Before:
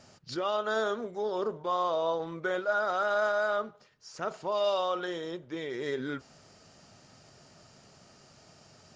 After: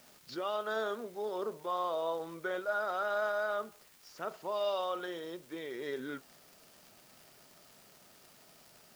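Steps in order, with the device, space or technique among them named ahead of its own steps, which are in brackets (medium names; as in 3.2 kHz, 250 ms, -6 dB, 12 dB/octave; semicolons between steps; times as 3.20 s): 78 rpm shellac record (band-pass 190–5500 Hz; crackle 140 per s -41 dBFS; white noise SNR 25 dB); trim -5 dB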